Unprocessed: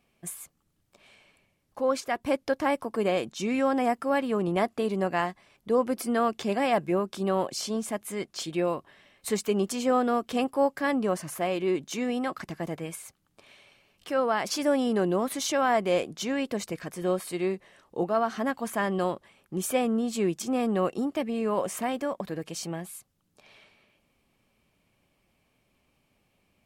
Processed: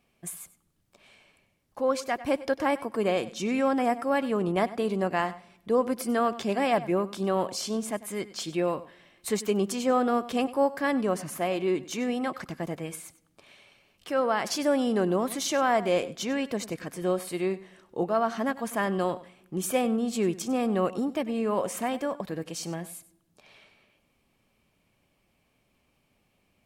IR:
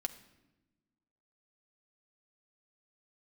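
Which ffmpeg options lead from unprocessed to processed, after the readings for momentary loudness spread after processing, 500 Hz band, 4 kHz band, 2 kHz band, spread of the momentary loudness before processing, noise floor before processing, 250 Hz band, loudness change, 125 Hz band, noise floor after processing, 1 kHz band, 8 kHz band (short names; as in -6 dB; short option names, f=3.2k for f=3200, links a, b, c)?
11 LU, 0.0 dB, 0.0 dB, 0.0 dB, 10 LU, -72 dBFS, 0.0 dB, 0.0 dB, 0.0 dB, -71 dBFS, 0.0 dB, 0.0 dB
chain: -filter_complex "[0:a]asplit=2[a][b];[1:a]atrim=start_sample=2205,adelay=96[c];[b][c]afir=irnorm=-1:irlink=0,volume=-16.5dB[d];[a][d]amix=inputs=2:normalize=0"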